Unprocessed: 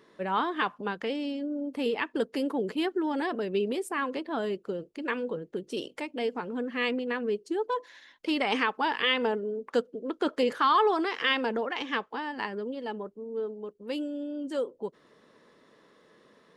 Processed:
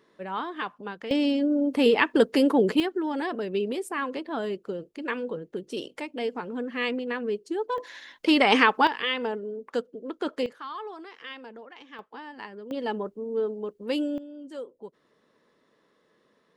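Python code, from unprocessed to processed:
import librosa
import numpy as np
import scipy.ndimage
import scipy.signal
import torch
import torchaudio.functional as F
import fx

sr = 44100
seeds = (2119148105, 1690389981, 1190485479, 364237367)

y = fx.gain(x, sr, db=fx.steps((0.0, -4.0), (1.11, 9.0), (2.8, 0.5), (7.78, 8.0), (8.87, -2.0), (10.46, -14.5), (11.99, -7.0), (12.71, 5.5), (14.18, -7.0)))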